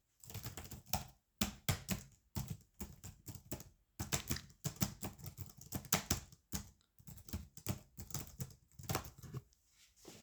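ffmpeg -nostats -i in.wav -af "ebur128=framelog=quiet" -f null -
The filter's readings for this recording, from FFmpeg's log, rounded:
Integrated loudness:
  I:         -43.7 LUFS
  Threshold: -54.2 LUFS
Loudness range:
  LRA:         5.9 LU
  Threshold: -63.9 LUFS
  LRA low:   -47.7 LUFS
  LRA high:  -41.8 LUFS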